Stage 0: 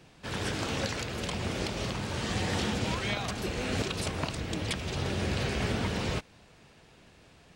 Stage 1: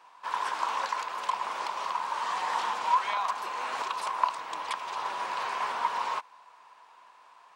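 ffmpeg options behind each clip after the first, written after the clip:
ffmpeg -i in.wav -af "highpass=frequency=1000:width_type=q:width=10,tiltshelf=frequency=1400:gain=4,volume=-2.5dB" out.wav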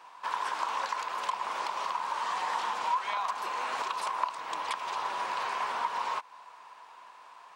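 ffmpeg -i in.wav -af "acompressor=threshold=-37dB:ratio=2,volume=4dB" out.wav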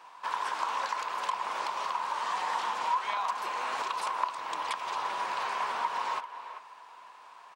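ffmpeg -i in.wav -filter_complex "[0:a]asplit=2[link_01][link_02];[link_02]adelay=390,highpass=300,lowpass=3400,asoftclip=type=hard:threshold=-22.5dB,volume=-11dB[link_03];[link_01][link_03]amix=inputs=2:normalize=0" out.wav

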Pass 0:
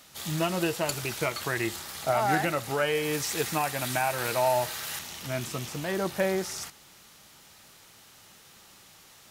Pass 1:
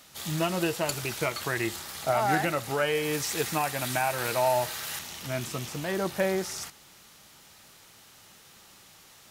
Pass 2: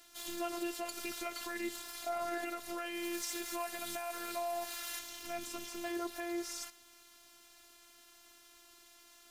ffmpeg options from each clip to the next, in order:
ffmpeg -i in.wav -af anull out.wav
ffmpeg -i in.wav -af "alimiter=limit=-22dB:level=0:latency=1:release=107,afftfilt=real='hypot(re,im)*cos(PI*b)':imag='0':win_size=512:overlap=0.75,volume=-3dB" out.wav

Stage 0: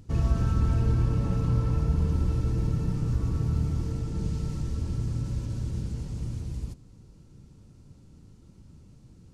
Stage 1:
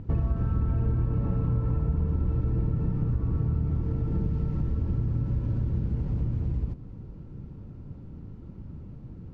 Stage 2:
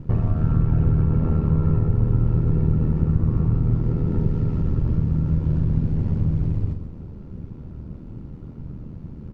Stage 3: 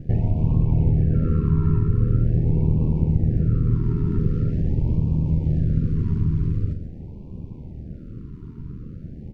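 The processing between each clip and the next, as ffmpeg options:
ffmpeg -i in.wav -af "lowpass=2200,tiltshelf=frequency=1500:gain=3.5,acompressor=threshold=-31dB:ratio=4,volume=6.5dB" out.wav
ffmpeg -i in.wav -filter_complex "[0:a]aeval=exprs='val(0)*sin(2*PI*39*n/s)':channel_layout=same,asplit=2[link_01][link_02];[link_02]adelay=44,volume=-11dB[link_03];[link_01][link_03]amix=inputs=2:normalize=0,aecho=1:1:129:0.376,volume=8dB" out.wav
ffmpeg -i in.wav -af "afftfilt=real='re*(1-between(b*sr/1024,620*pow(1600/620,0.5+0.5*sin(2*PI*0.44*pts/sr))/1.41,620*pow(1600/620,0.5+0.5*sin(2*PI*0.44*pts/sr))*1.41))':imag='im*(1-between(b*sr/1024,620*pow(1600/620,0.5+0.5*sin(2*PI*0.44*pts/sr))/1.41,620*pow(1600/620,0.5+0.5*sin(2*PI*0.44*pts/sr))*1.41))':win_size=1024:overlap=0.75" out.wav

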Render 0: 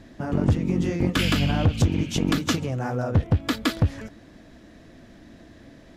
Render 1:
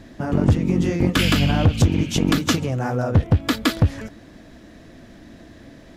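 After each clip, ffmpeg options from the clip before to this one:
ffmpeg -i in.wav -af "highshelf=frequency=12000:gain=4,volume=4dB" out.wav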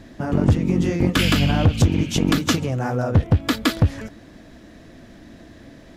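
ffmpeg -i in.wav -af anull out.wav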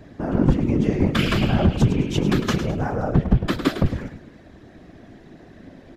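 ffmpeg -i in.wav -af "highshelf=frequency=3800:gain=-10.5,aecho=1:1:104|208|312|416:0.299|0.107|0.0387|0.0139,afftfilt=real='hypot(re,im)*cos(2*PI*random(0))':imag='hypot(re,im)*sin(2*PI*random(1))':win_size=512:overlap=0.75,volume=5dB" out.wav

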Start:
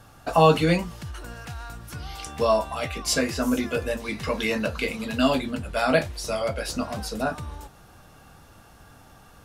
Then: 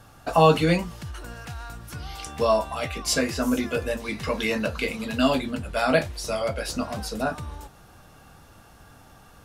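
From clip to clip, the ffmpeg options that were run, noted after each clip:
ffmpeg -i in.wav -af anull out.wav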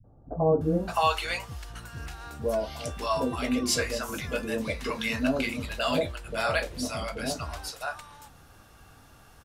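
ffmpeg -i in.wav -filter_complex "[0:a]acrossover=split=200|690[link_01][link_02][link_03];[link_02]adelay=40[link_04];[link_03]adelay=610[link_05];[link_01][link_04][link_05]amix=inputs=3:normalize=0,volume=-2dB" out.wav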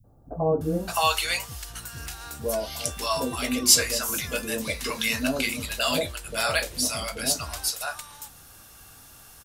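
ffmpeg -i in.wav -af "crystalizer=i=4:c=0,volume=-1dB" out.wav

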